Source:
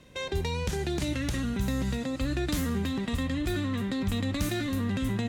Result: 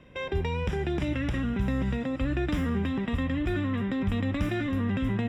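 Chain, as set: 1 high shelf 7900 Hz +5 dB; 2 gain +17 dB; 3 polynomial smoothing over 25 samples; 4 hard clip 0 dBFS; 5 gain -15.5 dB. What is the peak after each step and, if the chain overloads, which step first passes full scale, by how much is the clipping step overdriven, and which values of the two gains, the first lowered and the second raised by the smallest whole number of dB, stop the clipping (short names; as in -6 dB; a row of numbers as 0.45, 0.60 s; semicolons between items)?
-17.5, -0.5, -2.0, -2.0, -17.5 dBFS; no overload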